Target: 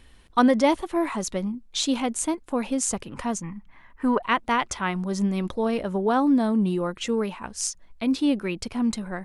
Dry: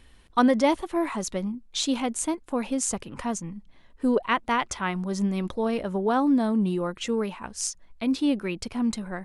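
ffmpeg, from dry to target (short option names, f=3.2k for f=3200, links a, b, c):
-filter_complex "[0:a]asettb=1/sr,asplit=3[a][b][c];[a]atrim=end=3.434[d];[b]atrim=start=3.43:end=4.22,asetpts=PTS-STARTPTS,afade=t=in:d=0.004:c=qsin,afade=t=out:st=0.786:d=0.004:c=qsin,equalizer=f=500:t=o:w=1:g=-7,equalizer=f=1k:t=o:w=1:g=10,equalizer=f=2k:t=o:w=1:g=9,equalizer=f=4k:t=o:w=1:g=-7,equalizer=f=8k:t=o:w=1:g=-5[e];[c]atrim=start=4.216[f];[d][e]acrossfade=d=0.004:c1=hsin:c2=qsin[g];[g][f]acrossfade=d=0.004:c1=qsin:c2=hsin,volume=1.5dB"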